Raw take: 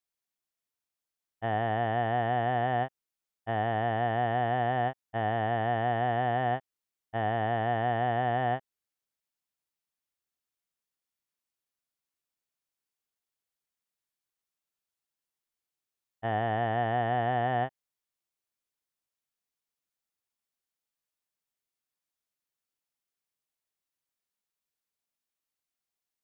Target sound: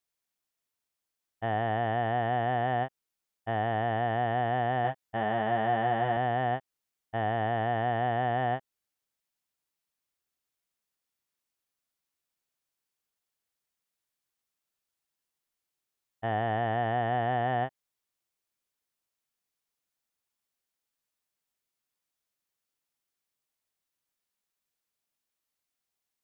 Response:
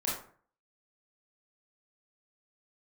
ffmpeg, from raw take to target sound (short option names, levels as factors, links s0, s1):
-filter_complex "[0:a]asplit=2[s0][s1];[s1]alimiter=level_in=1.12:limit=0.0631:level=0:latency=1:release=181,volume=0.891,volume=1.33[s2];[s0][s2]amix=inputs=2:normalize=0,asettb=1/sr,asplit=3[s3][s4][s5];[s3]atrim=end=4.834[s6];[s4]atrim=start=4.83:end=6.17,asetpts=PTS-STARTPTS,afade=t=in:d=0.004:c=qsin,afade=t=out:st=1.336:d=0.004:c=qsin,asplit=2[s7][s8];[s8]adelay=14,volume=0.596[s9];[s7][s9]amix=inputs=2:normalize=0,atrim=end_sample=59094[s10];[s5]atrim=start=6.166[s11];[s6][s10]acrossfade=d=0.004:c1=hsin:c2=qsin[s12];[s12][s11]acrossfade=d=0.004:c1=qsin:c2=hsin,volume=0.596"